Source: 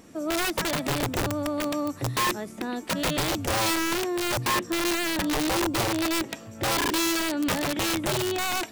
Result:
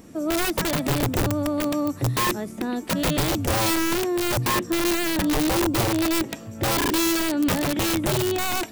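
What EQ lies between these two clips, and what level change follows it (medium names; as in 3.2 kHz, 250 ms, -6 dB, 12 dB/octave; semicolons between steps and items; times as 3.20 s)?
bass shelf 440 Hz +7 dB; treble shelf 11 kHz +7 dB; 0.0 dB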